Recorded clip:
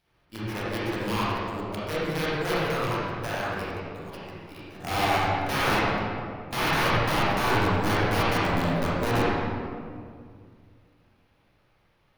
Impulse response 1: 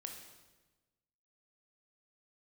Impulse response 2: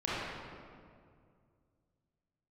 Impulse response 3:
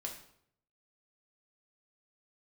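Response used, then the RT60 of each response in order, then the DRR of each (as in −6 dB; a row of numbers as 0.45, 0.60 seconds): 2; 1.2, 2.2, 0.65 seconds; 2.5, −9.5, 0.0 decibels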